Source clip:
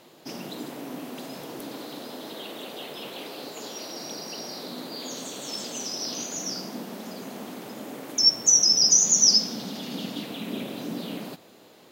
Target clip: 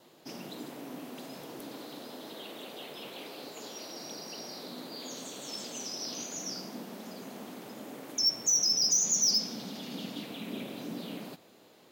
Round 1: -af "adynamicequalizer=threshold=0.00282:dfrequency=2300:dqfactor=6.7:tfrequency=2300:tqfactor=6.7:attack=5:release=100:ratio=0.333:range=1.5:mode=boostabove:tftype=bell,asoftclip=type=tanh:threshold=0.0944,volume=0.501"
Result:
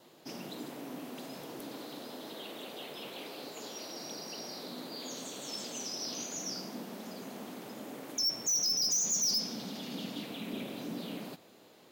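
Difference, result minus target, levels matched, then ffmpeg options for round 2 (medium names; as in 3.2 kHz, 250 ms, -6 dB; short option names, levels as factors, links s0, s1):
saturation: distortion +8 dB
-af "adynamicequalizer=threshold=0.00282:dfrequency=2300:dqfactor=6.7:tfrequency=2300:tqfactor=6.7:attack=5:release=100:ratio=0.333:range=1.5:mode=boostabove:tftype=bell,asoftclip=type=tanh:threshold=0.224,volume=0.501"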